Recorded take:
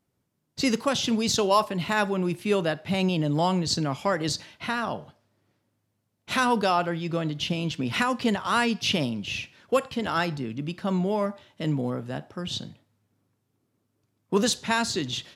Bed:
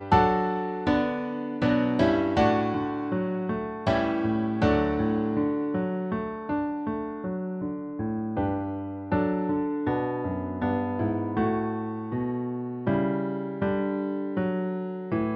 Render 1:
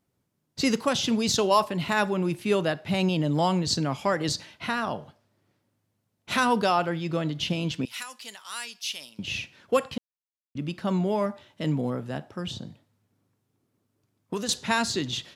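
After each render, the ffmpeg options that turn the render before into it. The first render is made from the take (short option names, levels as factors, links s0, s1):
-filter_complex "[0:a]asettb=1/sr,asplit=3[s0][s1][s2];[s0]atrim=end=7.854[s3];[s1]atrim=start=7.85:end=9.19,asetpts=PTS-STARTPTS,afade=t=in:d=0.004:c=qsin,afade=t=out:st=1.336:d=0.004:c=qsin,aderivative[s4];[s2]atrim=start=9.186[s5];[s3][s4]acrossfade=d=0.004:c1=hsin:c2=qsin[s6];[s6][s5]acrossfade=d=0.004:c1=qsin:c2=hsin,asettb=1/sr,asplit=3[s7][s8][s9];[s7]atrim=end=12.514[s10];[s8]atrim=start=12.51:end=14.49,asetpts=PTS-STARTPTS,afade=t=in:d=0.004:c=qsin,afade=t=out:st=1.976:d=0.004:c=qsin,acrossover=split=1400|5200[s11][s12][s13];[s11]acompressor=threshold=0.0316:ratio=4[s14];[s12]acompressor=threshold=0.00562:ratio=4[s15];[s13]acompressor=threshold=0.00398:ratio=4[s16];[s14][s15][s16]amix=inputs=3:normalize=0[s17];[s9]atrim=start=14.486[s18];[s10][s17]acrossfade=d=0.004:c1=hsin:c2=qsin[s19];[s19][s18]acrossfade=d=0.004:c1=qsin:c2=hsin,asplit=3[s20][s21][s22];[s20]atrim=end=9.98,asetpts=PTS-STARTPTS,afade=t=out:st=9.976:d=0.004:c=hsin[s23];[s21]atrim=start=9.98:end=10.55,asetpts=PTS-STARTPTS,volume=0[s24];[s22]atrim=start=10.55,asetpts=PTS-STARTPTS,afade=t=in:d=0.004:c=hsin[s25];[s23][s24][s25]concat=n=3:v=0:a=1"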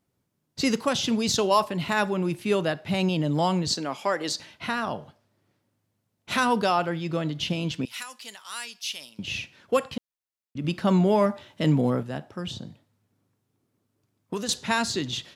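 -filter_complex "[0:a]asettb=1/sr,asplit=3[s0][s1][s2];[s0]atrim=end=3.724[s3];[s1]atrim=start=3.72:end=4.4,asetpts=PTS-STARTPTS,afade=t=in:d=0.004:c=qsin,afade=t=out:st=0.676:d=0.004:c=qsin,highpass=310[s4];[s2]atrim=start=4.396[s5];[s3][s4]acrossfade=d=0.004:c1=hsin:c2=qsin[s6];[s6][s5]acrossfade=d=0.004:c1=qsin:c2=hsin,asettb=1/sr,asplit=3[s7][s8][s9];[s7]atrim=end=10.644[s10];[s8]atrim=start=10.64:end=12.03,asetpts=PTS-STARTPTS,afade=t=in:d=0.004:c=qsin,afade=t=out:st=1.386:d=0.004:c=qsin,acontrast=32[s11];[s9]atrim=start=12.026[s12];[s10][s11]acrossfade=d=0.004:c1=hsin:c2=qsin[s13];[s13][s12]acrossfade=d=0.004:c1=qsin:c2=hsin"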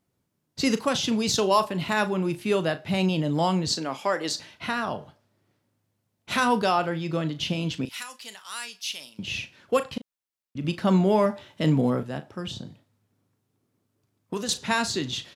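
-filter_complex "[0:a]asplit=2[s0][s1];[s1]adelay=37,volume=0.224[s2];[s0][s2]amix=inputs=2:normalize=0"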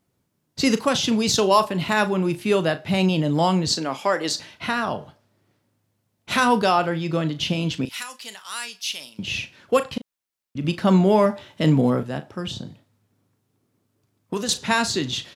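-af "volume=1.58"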